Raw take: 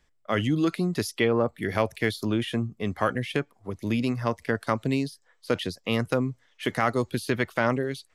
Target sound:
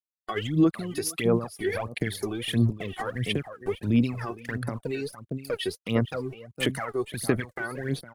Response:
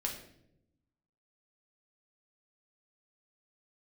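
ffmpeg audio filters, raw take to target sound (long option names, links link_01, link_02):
-filter_complex "[0:a]aeval=exprs='val(0)*gte(abs(val(0)),0.01)':channel_layout=same,equalizer=frequency=10000:width_type=o:width=0.79:gain=7,alimiter=level_in=2dB:limit=-24dB:level=0:latency=1:release=302,volume=-2dB,acompressor=threshold=-43dB:ratio=1.5,asplit=2[link_01][link_02];[link_02]aecho=0:1:460:0.266[link_03];[link_01][link_03]amix=inputs=2:normalize=0,afftdn=noise_reduction=17:noise_floor=-55,aphaser=in_gain=1:out_gain=1:delay=2.7:decay=0.76:speed=1.5:type=sinusoidal,volume=7.5dB"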